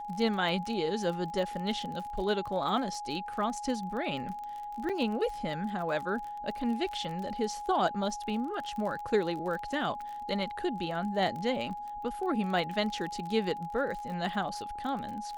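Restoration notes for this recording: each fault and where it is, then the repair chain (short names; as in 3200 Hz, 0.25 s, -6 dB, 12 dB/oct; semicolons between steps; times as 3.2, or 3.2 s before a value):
crackle 35/s -37 dBFS
tone 830 Hz -37 dBFS
4.89–4.9 gap 6 ms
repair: de-click; notch 830 Hz, Q 30; interpolate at 4.89, 6 ms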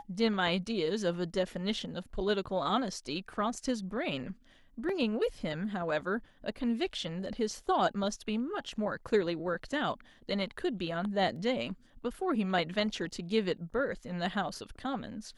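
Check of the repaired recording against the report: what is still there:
none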